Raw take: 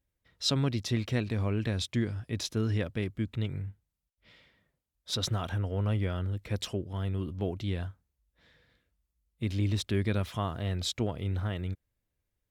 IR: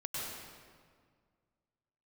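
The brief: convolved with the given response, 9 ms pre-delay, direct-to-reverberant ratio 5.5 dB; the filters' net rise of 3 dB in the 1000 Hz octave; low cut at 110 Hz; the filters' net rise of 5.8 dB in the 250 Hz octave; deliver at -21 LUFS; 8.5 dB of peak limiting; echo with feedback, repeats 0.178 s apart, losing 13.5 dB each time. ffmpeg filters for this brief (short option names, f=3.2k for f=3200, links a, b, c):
-filter_complex "[0:a]highpass=110,equalizer=f=250:t=o:g=7.5,equalizer=f=1k:t=o:g=3.5,alimiter=limit=-20.5dB:level=0:latency=1,aecho=1:1:178|356:0.211|0.0444,asplit=2[a][b];[1:a]atrim=start_sample=2205,adelay=9[c];[b][c]afir=irnorm=-1:irlink=0,volume=-8dB[d];[a][d]amix=inputs=2:normalize=0,volume=10dB"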